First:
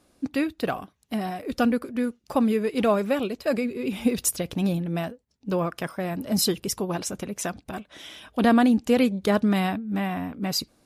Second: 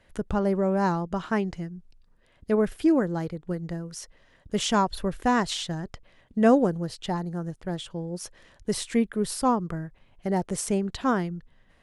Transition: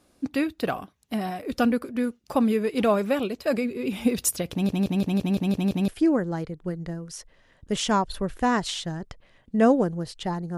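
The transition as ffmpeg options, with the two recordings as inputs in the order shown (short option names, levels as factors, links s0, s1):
-filter_complex "[0:a]apad=whole_dur=10.57,atrim=end=10.57,asplit=8[s0][s1][s2][s3][s4][s5][s6][s7];[s0]atrim=end=4.692[s8];[s1]atrim=start=4.518:end=4.692[s9];[s2]atrim=start=4.518:end=4.692[s10];[s3]atrim=start=4.518:end=4.692[s11];[s4]atrim=start=4.518:end=4.692[s12];[s5]atrim=start=4.518:end=4.692[s13];[s6]atrim=start=4.518:end=4.692[s14];[s7]atrim=start=4.518:end=4.692[s15];[1:a]atrim=start=2.708:end=7.4[s16];[s8][s9]acrossfade=d=0.004:c1=hsin:c2=hsin[s17];[s17][s10]acrossfade=d=0.004:c1=hsin:c2=hsin[s18];[s18][s11]acrossfade=d=0.004:c1=hsin:c2=hsin[s19];[s19][s12]acrossfade=d=0.004:c1=hsin:c2=hsin[s20];[s20][s13]acrossfade=d=0.004:c1=hsin:c2=hsin[s21];[s21][s14]acrossfade=d=0.004:c1=hsin:c2=hsin[s22];[s22][s15]acrossfade=d=0.004:c1=hsin:c2=hsin[s23];[s23][s16]acrossfade=d=0.004:c1=hsin:c2=hsin"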